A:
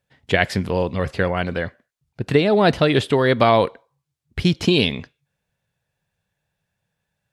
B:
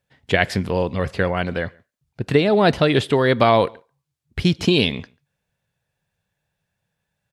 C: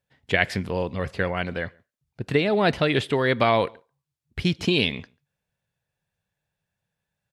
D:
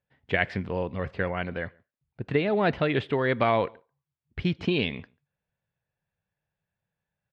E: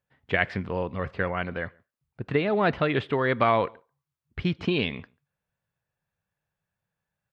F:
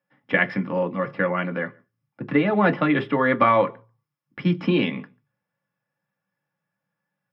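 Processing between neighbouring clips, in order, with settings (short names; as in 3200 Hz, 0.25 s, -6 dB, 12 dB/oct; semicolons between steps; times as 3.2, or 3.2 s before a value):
outdoor echo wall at 24 m, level -28 dB
dynamic EQ 2200 Hz, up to +5 dB, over -33 dBFS, Q 1.4; gain -5.5 dB
LPF 2700 Hz 12 dB/oct; gain -3 dB
bell 1200 Hz +5 dB 0.62 oct
reverb RT60 0.15 s, pre-delay 3 ms, DRR 3 dB; gain -4.5 dB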